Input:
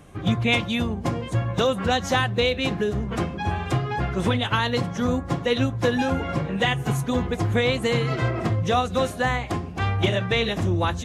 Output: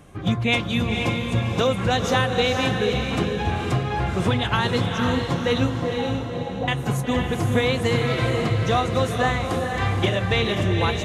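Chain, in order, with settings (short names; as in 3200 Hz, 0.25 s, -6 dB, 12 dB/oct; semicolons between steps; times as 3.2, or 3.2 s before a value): 5.78–6.68 ladder low-pass 950 Hz, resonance 35%; diffused feedback echo 0.486 s, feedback 43%, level -4 dB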